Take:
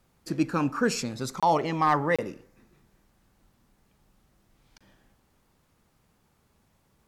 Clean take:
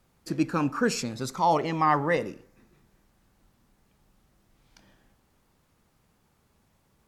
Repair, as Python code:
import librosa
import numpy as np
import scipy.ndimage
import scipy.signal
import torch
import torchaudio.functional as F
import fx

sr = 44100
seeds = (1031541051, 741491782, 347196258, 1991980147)

y = fx.fix_declip(x, sr, threshold_db=-13.5)
y = fx.fix_interpolate(y, sr, at_s=(1.4, 2.16, 4.78), length_ms=26.0)